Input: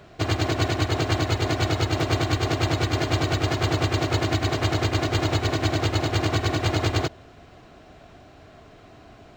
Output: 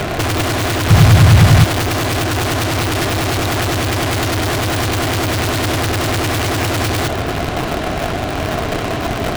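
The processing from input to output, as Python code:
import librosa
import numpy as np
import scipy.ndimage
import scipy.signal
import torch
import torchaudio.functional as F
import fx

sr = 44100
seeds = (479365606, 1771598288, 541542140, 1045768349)

p1 = scipy.signal.sosfilt(scipy.signal.butter(4, 4000.0, 'lowpass', fs=sr, output='sos'), x)
p2 = fx.fuzz(p1, sr, gain_db=50.0, gate_db=-58.0)
p3 = fx.low_shelf_res(p2, sr, hz=230.0, db=9.0, q=3.0, at=(0.9, 1.64))
p4 = fx.quant_companded(p3, sr, bits=2)
p5 = p3 + (p4 * librosa.db_to_amplitude(-10.5))
y = p5 * librosa.db_to_amplitude(-4.5)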